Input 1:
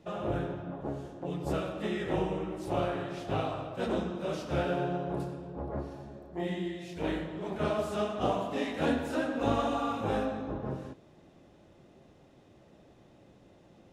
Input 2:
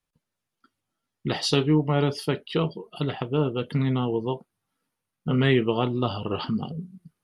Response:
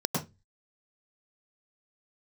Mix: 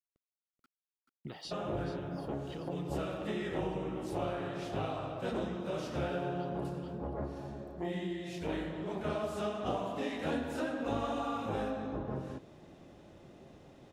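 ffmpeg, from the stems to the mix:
-filter_complex "[0:a]adelay=1450,volume=1.41[s0];[1:a]highshelf=f=4500:g=-9.5,acompressor=threshold=0.0251:ratio=6,aeval=exprs='val(0)*gte(abs(val(0)),0.00141)':c=same,volume=0.355,asplit=2[s1][s2];[s2]volume=0.501,aecho=0:1:433:1[s3];[s0][s1][s3]amix=inputs=3:normalize=0,acompressor=threshold=0.0126:ratio=2"

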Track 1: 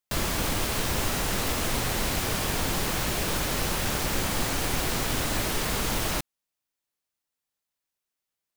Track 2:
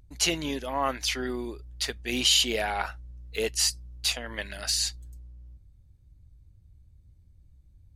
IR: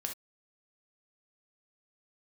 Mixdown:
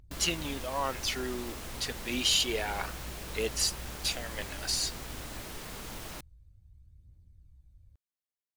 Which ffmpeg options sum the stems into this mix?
-filter_complex "[0:a]volume=0.188[s0];[1:a]aphaser=in_gain=1:out_gain=1:delay=4.3:decay=0.39:speed=0.28:type=triangular,volume=0.562[s1];[s0][s1]amix=inputs=2:normalize=0"

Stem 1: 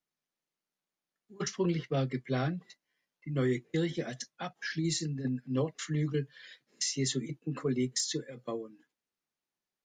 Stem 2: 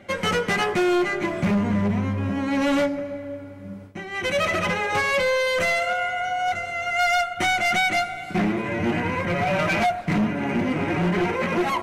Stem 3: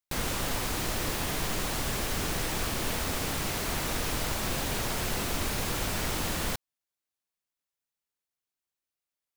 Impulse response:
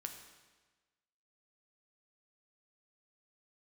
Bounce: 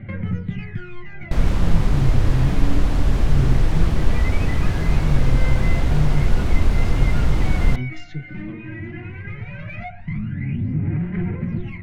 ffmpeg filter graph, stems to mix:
-filter_complex "[0:a]volume=0.473[s0];[1:a]acompressor=threshold=0.0447:ratio=5,aphaser=in_gain=1:out_gain=1:delay=3.3:decay=0.79:speed=0.18:type=sinusoidal,volume=0.251[s1];[2:a]adelay=1200,volume=1.33[s2];[s0][s1]amix=inputs=2:normalize=0,equalizer=f=125:t=o:w=1:g=11,equalizer=f=500:t=o:w=1:g=-8,equalizer=f=1000:t=o:w=1:g=-6,equalizer=f=2000:t=o:w=1:g=10,equalizer=f=8000:t=o:w=1:g=-10,alimiter=level_in=1.06:limit=0.0631:level=0:latency=1:release=36,volume=0.944,volume=1[s3];[s2][s3]amix=inputs=2:normalize=0,aemphasis=mode=reproduction:type=riaa,bandreject=f=87.18:t=h:w=4,bandreject=f=174.36:t=h:w=4,bandreject=f=261.54:t=h:w=4,bandreject=f=348.72:t=h:w=4,bandreject=f=435.9:t=h:w=4,bandreject=f=523.08:t=h:w=4,bandreject=f=610.26:t=h:w=4,bandreject=f=697.44:t=h:w=4,bandreject=f=784.62:t=h:w=4,bandreject=f=871.8:t=h:w=4,bandreject=f=958.98:t=h:w=4,bandreject=f=1046.16:t=h:w=4,bandreject=f=1133.34:t=h:w=4,bandreject=f=1220.52:t=h:w=4,bandreject=f=1307.7:t=h:w=4,bandreject=f=1394.88:t=h:w=4,bandreject=f=1482.06:t=h:w=4,bandreject=f=1569.24:t=h:w=4,bandreject=f=1656.42:t=h:w=4,bandreject=f=1743.6:t=h:w=4,bandreject=f=1830.78:t=h:w=4,bandreject=f=1917.96:t=h:w=4,bandreject=f=2005.14:t=h:w=4,bandreject=f=2092.32:t=h:w=4,bandreject=f=2179.5:t=h:w=4,bandreject=f=2266.68:t=h:w=4,bandreject=f=2353.86:t=h:w=4,bandreject=f=2441.04:t=h:w=4,bandreject=f=2528.22:t=h:w=4,bandreject=f=2615.4:t=h:w=4,bandreject=f=2702.58:t=h:w=4,bandreject=f=2789.76:t=h:w=4,bandreject=f=2876.94:t=h:w=4,bandreject=f=2964.12:t=h:w=4"

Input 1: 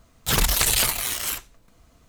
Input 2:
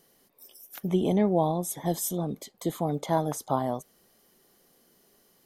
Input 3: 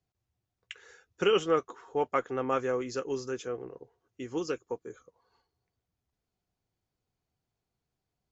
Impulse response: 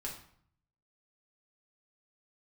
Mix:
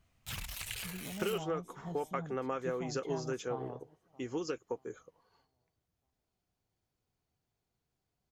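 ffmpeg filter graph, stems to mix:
-filter_complex "[0:a]volume=0.126[s0];[1:a]lowpass=f=1400:p=1,flanger=delay=5:depth=2.1:regen=63:speed=1.4:shape=triangular,volume=0.335,asplit=2[s1][s2];[s2]volume=0.0668[s3];[2:a]acompressor=threshold=0.0251:ratio=10,volume=1[s4];[s0][s1]amix=inputs=2:normalize=0,equalizer=f=100:t=o:w=0.67:g=10,equalizer=f=400:t=o:w=0.67:g=-11,equalizer=f=2500:t=o:w=0.67:g=8,alimiter=level_in=2:limit=0.0631:level=0:latency=1:release=441,volume=0.501,volume=1[s5];[s3]aecho=0:1:627|1254|1881|2508|3135:1|0.36|0.13|0.0467|0.0168[s6];[s4][s5][s6]amix=inputs=3:normalize=0"

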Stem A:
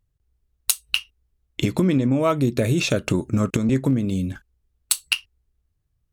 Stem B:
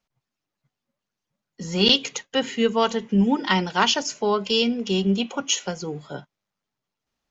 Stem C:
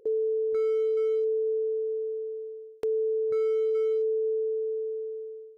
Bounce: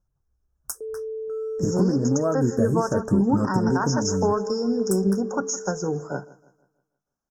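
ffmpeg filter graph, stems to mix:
-filter_complex "[0:a]highshelf=f=3800:g=-9,flanger=delay=5.7:depth=7.5:regen=-46:speed=0.88:shape=sinusoidal,volume=1.06[s0];[1:a]volume=0.501,asplit=2[s1][s2];[s2]volume=0.316[s3];[2:a]adelay=750,volume=0.251[s4];[s1][s4]amix=inputs=2:normalize=0,dynaudnorm=f=160:g=11:m=3.76,alimiter=limit=0.224:level=0:latency=1:release=223,volume=1[s5];[s3]aecho=0:1:160|320|480|640|800|960:1|0.41|0.168|0.0689|0.0283|0.0116[s6];[s0][s5][s6]amix=inputs=3:normalize=0,asuperstop=centerf=3000:order=20:qfactor=0.86"

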